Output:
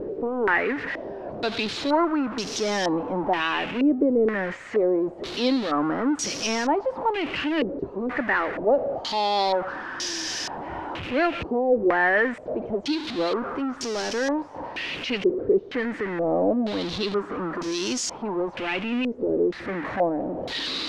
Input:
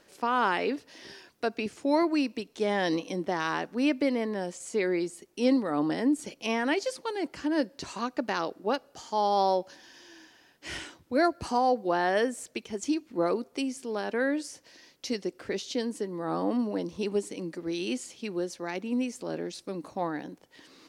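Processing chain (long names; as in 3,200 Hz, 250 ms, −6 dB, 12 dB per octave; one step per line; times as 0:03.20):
converter with a step at zero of −27.5 dBFS
pitch vibrato 1.2 Hz 17 cents
low-pass on a step sequencer 2.1 Hz 430–5,700 Hz
level −1 dB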